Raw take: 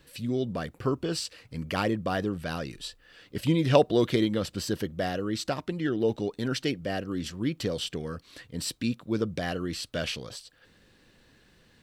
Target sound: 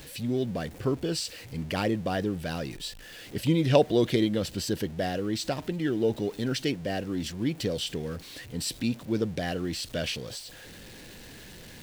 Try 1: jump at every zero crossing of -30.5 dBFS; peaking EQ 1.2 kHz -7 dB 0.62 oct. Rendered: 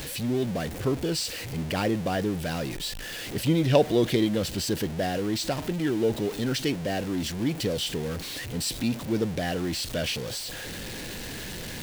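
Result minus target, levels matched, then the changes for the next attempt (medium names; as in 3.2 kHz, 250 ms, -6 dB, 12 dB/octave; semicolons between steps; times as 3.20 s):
jump at every zero crossing: distortion +10 dB
change: jump at every zero crossing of -41.5 dBFS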